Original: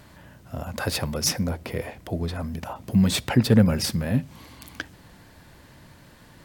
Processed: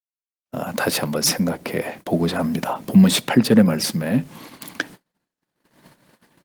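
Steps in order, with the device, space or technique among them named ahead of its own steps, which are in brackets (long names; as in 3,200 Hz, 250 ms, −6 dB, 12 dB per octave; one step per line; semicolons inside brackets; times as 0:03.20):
0:01.71–0:02.26: dynamic equaliser 470 Hz, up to −4 dB, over −47 dBFS, Q 6.1
video call (high-pass filter 160 Hz 24 dB per octave; automatic gain control gain up to 13.5 dB; noise gate −36 dBFS, range −58 dB; level −1 dB; Opus 24 kbit/s 48,000 Hz)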